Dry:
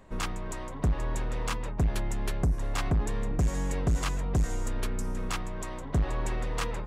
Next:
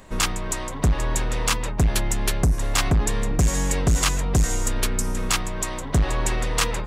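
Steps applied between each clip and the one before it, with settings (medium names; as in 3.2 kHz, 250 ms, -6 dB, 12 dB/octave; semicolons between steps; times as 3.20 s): treble shelf 2.5 kHz +10.5 dB; trim +6.5 dB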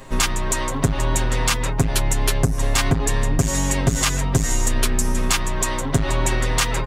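compression, threshold -21 dBFS, peak gain reduction 5.5 dB; comb 7.5 ms, depth 85%; crackle 28 per s -45 dBFS; trim +4 dB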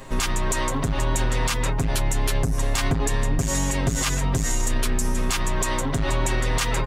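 peak limiter -13.5 dBFS, peak gain reduction 9 dB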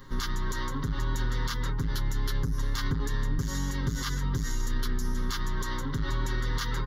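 static phaser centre 2.5 kHz, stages 6; trim -5.5 dB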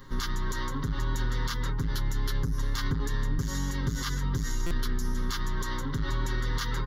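buffer glitch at 4.66 s, samples 256, times 7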